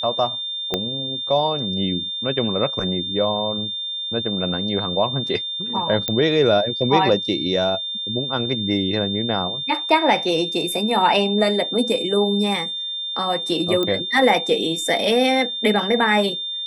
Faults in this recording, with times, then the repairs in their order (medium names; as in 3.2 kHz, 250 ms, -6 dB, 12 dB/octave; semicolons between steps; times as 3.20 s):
whine 3.6 kHz -25 dBFS
0.74 s: pop -7 dBFS
6.08 s: pop -7 dBFS
13.83 s: pop -10 dBFS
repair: de-click; band-stop 3.6 kHz, Q 30